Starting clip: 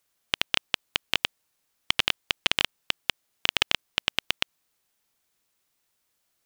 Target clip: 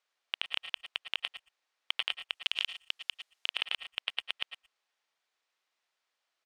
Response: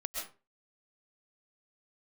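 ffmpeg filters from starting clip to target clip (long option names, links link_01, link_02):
-filter_complex "[0:a]asettb=1/sr,asplit=3[link_01][link_02][link_03];[link_01]atrim=end=2.344[link_04];[link_02]atrim=start=2.34:end=3.49,asetpts=PTS-STARTPTS,afade=type=in:duration=0.004:curve=qsin,afade=type=out:start_time=1.146:duration=0.004:curve=qsin,aemphasis=mode=production:type=50kf[link_05];[link_03]atrim=start=3.486[link_06];[link_04][link_05]acrossfade=duration=0.004:curve1=hsin:curve2=qsin[link_07];[link_07][link_06]acrossfade=duration=0.004:curve1=qsin:curve2=hsin,asoftclip=type=tanh:threshold=-12dB,highpass=560,lowpass=4200,asplit=2[link_08][link_09];[link_09]adelay=120,highpass=300,lowpass=3400,asoftclip=type=hard:threshold=-20dB,volume=-17dB[link_10];[link_08][link_10]amix=inputs=2:normalize=0[link_11];[1:a]atrim=start_sample=2205,afade=type=out:start_time=0.16:duration=0.01,atrim=end_sample=7497[link_12];[link_11][link_12]afir=irnorm=-1:irlink=0"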